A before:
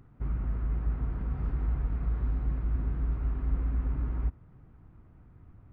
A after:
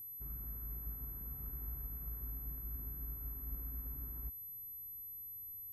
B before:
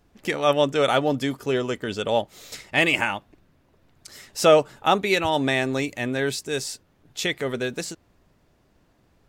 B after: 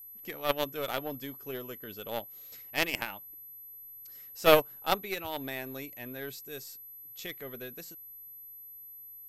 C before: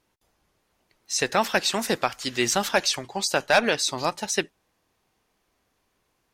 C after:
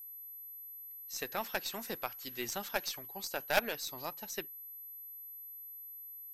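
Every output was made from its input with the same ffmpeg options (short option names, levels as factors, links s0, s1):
-af "aeval=exprs='val(0)+0.0355*sin(2*PI*12000*n/s)':c=same,aeval=exprs='0.631*(cos(1*acos(clip(val(0)/0.631,-1,1)))-cos(1*PI/2))+0.141*(cos(2*acos(clip(val(0)/0.631,-1,1)))-cos(2*PI/2))+0.141*(cos(3*acos(clip(val(0)/0.631,-1,1)))-cos(3*PI/2))+0.00562*(cos(8*acos(clip(val(0)/0.631,-1,1)))-cos(8*PI/2))':c=same,agate=range=0.501:threshold=0.0891:ratio=16:detection=peak,volume=0.891"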